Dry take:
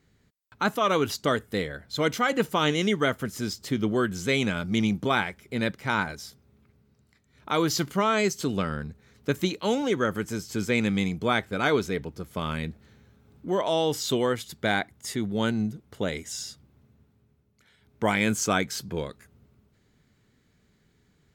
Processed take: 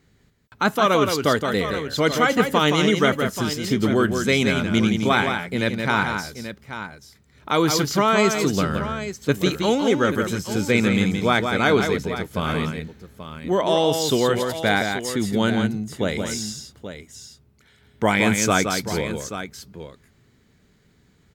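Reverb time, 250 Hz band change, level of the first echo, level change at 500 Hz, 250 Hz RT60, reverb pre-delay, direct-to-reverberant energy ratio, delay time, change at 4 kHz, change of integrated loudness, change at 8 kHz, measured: no reverb, +6.0 dB, -6.0 dB, +6.0 dB, no reverb, no reverb, no reverb, 170 ms, +6.0 dB, +6.0 dB, +6.0 dB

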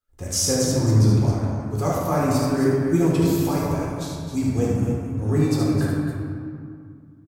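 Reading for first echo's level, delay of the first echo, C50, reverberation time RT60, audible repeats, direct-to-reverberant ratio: -4.0 dB, 74 ms, -3.0 dB, 2.2 s, 2, -6.5 dB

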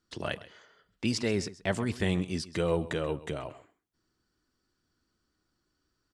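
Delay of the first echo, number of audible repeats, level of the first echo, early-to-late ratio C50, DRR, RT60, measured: 132 ms, 1, -17.5 dB, no reverb, no reverb, no reverb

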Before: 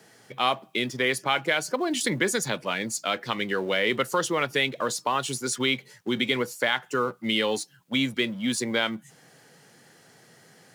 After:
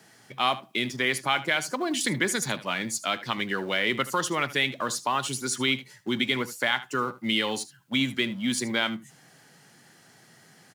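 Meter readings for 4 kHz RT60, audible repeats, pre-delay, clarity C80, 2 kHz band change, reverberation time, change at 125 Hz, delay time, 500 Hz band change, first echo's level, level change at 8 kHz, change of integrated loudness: no reverb, 1, no reverb, no reverb, 0.0 dB, no reverb, 0.0 dB, 76 ms, -4.5 dB, -16.5 dB, 0.0 dB, -0.5 dB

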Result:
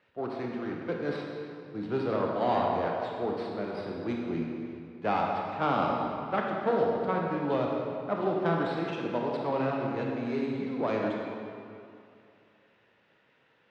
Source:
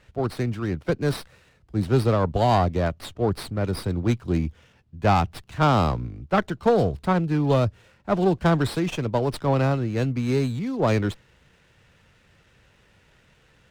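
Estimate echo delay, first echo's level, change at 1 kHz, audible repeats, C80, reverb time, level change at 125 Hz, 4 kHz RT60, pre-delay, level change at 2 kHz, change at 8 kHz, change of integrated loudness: no echo, no echo, -4.5 dB, no echo, 1.5 dB, 2.5 s, -15.5 dB, 1.8 s, 24 ms, -5.0 dB, under -20 dB, -7.0 dB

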